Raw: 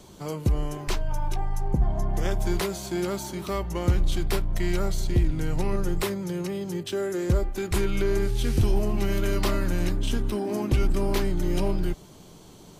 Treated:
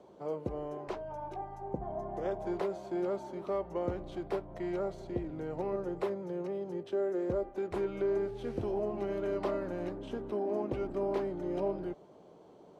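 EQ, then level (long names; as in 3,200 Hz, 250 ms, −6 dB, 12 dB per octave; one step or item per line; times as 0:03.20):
resonant band-pass 560 Hz, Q 1.6
0.0 dB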